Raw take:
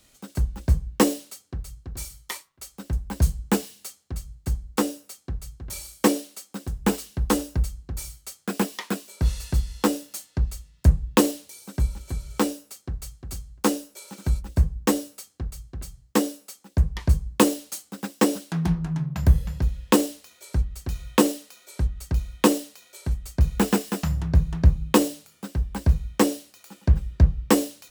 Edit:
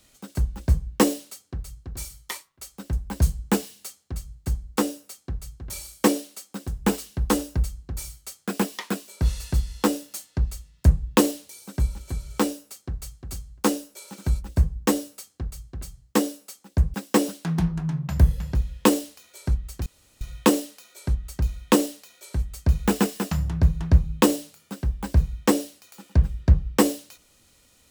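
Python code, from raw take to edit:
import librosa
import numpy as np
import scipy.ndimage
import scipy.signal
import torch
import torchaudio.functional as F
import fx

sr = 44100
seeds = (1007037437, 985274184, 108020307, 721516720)

y = fx.edit(x, sr, fx.cut(start_s=16.94, length_s=1.07),
    fx.insert_room_tone(at_s=20.93, length_s=0.35), tone=tone)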